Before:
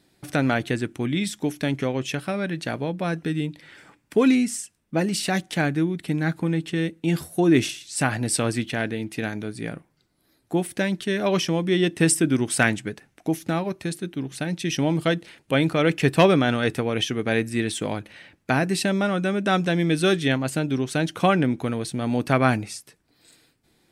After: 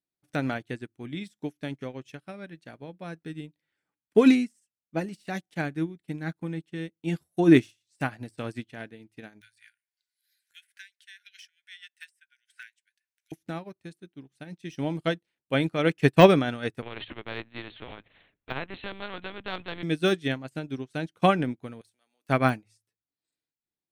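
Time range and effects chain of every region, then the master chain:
9.41–13.32 brick-wall FIR high-pass 1400 Hz + three-band squash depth 100%
16.82–19.83 LPC vocoder at 8 kHz pitch kept + spectral compressor 2:1
21.81–22.29 compressor, threshold -29 dBFS + HPF 310 Hz + tilt +4.5 dB/oct
whole clip: de-esser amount 60%; de-hum 54.03 Hz, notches 2; upward expander 2.5:1, over -39 dBFS; gain +4 dB

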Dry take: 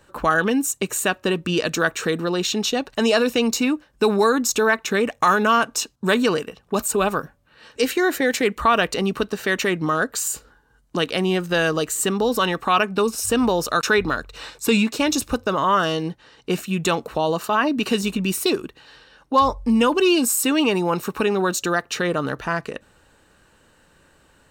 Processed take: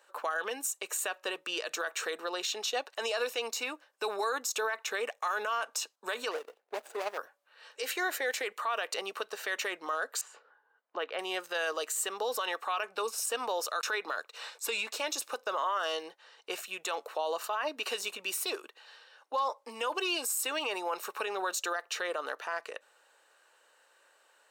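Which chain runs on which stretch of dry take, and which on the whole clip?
6.31–7.18 median filter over 41 samples + bell 150 Hz -11.5 dB 0.53 oct
10.21–11.19 LPF 2100 Hz + de-esser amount 80%
whole clip: HPF 510 Hz 24 dB/oct; limiter -16.5 dBFS; gain -6.5 dB

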